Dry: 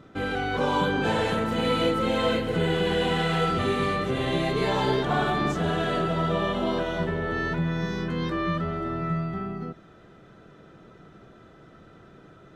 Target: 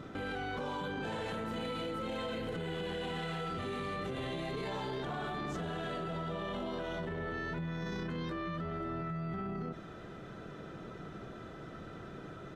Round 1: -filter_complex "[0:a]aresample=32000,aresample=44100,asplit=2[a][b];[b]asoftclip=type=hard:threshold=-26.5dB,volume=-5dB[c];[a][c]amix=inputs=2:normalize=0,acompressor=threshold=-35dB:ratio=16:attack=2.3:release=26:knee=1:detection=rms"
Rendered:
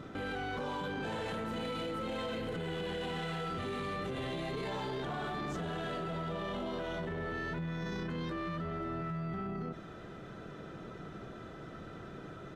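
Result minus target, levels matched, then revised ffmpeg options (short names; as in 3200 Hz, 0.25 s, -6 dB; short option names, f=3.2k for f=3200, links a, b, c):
hard clip: distortion +22 dB
-filter_complex "[0:a]aresample=32000,aresample=44100,asplit=2[a][b];[b]asoftclip=type=hard:threshold=-16dB,volume=-5dB[c];[a][c]amix=inputs=2:normalize=0,acompressor=threshold=-35dB:ratio=16:attack=2.3:release=26:knee=1:detection=rms"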